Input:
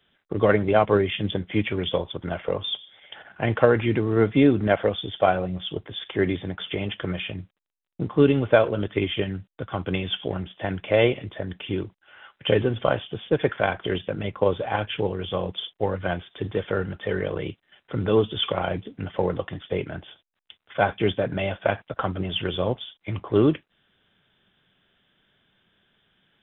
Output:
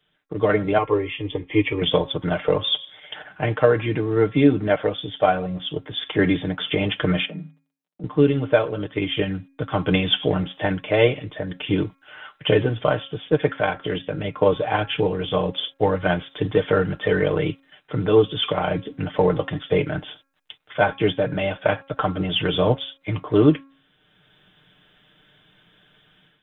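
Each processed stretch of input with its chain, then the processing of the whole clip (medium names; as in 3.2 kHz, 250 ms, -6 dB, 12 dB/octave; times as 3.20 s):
0.78–1.82 s: low-pass 2.8 kHz 6 dB/octave + static phaser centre 1 kHz, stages 8
7.25–8.04 s: rippled Chebyshev high-pass 150 Hz, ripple 6 dB + compression 2.5:1, threshold -47 dBFS + bass shelf 310 Hz +10 dB
whole clip: comb 6.6 ms, depth 57%; de-hum 273.2 Hz, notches 9; level rider gain up to 11.5 dB; trim -3.5 dB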